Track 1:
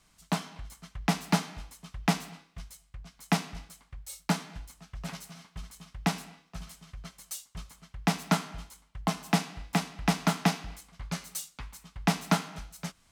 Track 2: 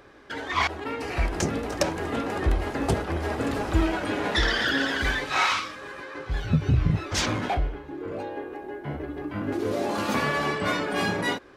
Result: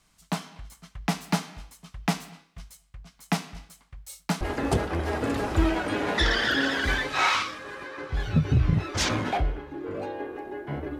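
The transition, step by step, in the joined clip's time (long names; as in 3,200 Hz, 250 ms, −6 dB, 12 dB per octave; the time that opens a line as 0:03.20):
track 1
0:04.41: continue with track 2 from 0:02.58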